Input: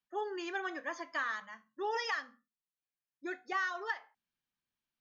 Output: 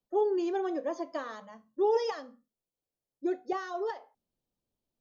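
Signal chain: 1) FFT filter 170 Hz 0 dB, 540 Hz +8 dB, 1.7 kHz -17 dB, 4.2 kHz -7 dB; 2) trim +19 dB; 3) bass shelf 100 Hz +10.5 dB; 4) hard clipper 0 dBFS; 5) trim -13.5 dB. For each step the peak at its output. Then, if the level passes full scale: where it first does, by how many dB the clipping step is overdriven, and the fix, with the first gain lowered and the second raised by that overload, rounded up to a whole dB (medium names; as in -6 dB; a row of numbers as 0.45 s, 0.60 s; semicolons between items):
-23.5 dBFS, -4.5 dBFS, -4.0 dBFS, -4.0 dBFS, -17.5 dBFS; nothing clips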